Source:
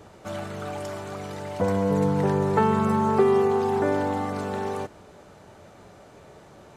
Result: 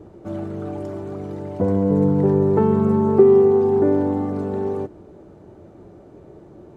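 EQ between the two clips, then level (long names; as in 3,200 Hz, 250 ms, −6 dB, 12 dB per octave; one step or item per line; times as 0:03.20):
tilt shelving filter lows +9.5 dB, about 910 Hz
parametric band 340 Hz +10 dB 0.49 octaves
−4.0 dB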